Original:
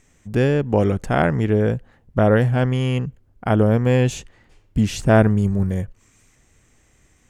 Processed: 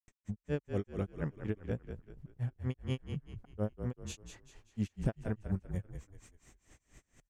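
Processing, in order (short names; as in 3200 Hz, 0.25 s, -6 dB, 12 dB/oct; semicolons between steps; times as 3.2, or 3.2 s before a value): compressor 2.5:1, threshold -33 dBFS, peak gain reduction 16 dB; grains 0.127 s, grains 4.2/s, pitch spread up and down by 0 st; frequency-shifting echo 0.194 s, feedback 38%, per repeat -35 Hz, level -8 dB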